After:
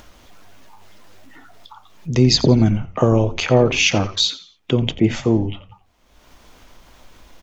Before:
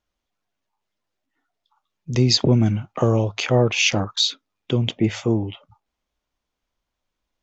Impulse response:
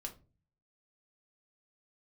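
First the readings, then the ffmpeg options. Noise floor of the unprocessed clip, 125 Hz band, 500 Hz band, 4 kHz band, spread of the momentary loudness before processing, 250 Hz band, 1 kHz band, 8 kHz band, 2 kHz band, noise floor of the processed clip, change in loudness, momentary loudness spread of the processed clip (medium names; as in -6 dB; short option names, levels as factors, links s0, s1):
-82 dBFS, +2.0 dB, +4.0 dB, +2.0 dB, 7 LU, +4.0 dB, +3.5 dB, no reading, +2.5 dB, -57 dBFS, +3.0 dB, 9 LU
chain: -filter_complex "[0:a]acompressor=mode=upward:threshold=0.0447:ratio=2.5,asplit=4[s0][s1][s2][s3];[s1]adelay=87,afreqshift=-97,volume=0.158[s4];[s2]adelay=174,afreqshift=-194,volume=0.0537[s5];[s3]adelay=261,afreqshift=-291,volume=0.0184[s6];[s0][s4][s5][s6]amix=inputs=4:normalize=0,asplit=2[s7][s8];[1:a]atrim=start_sample=2205,atrim=end_sample=6174,lowpass=2800[s9];[s8][s9]afir=irnorm=-1:irlink=0,volume=0.376[s10];[s7][s10]amix=inputs=2:normalize=0,volume=1.26"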